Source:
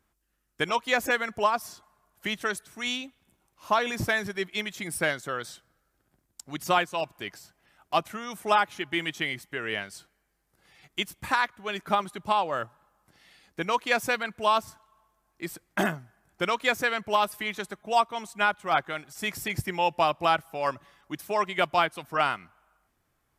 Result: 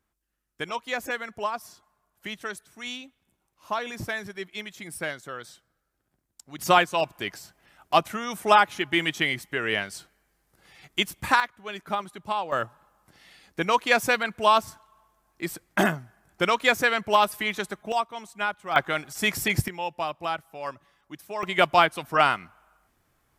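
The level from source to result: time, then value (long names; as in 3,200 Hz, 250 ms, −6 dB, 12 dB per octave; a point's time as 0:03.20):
−5 dB
from 0:06.59 +5 dB
from 0:11.40 −3.5 dB
from 0:12.52 +4 dB
from 0:17.92 −3.5 dB
from 0:18.76 +6.5 dB
from 0:19.68 −6 dB
from 0:21.43 +5 dB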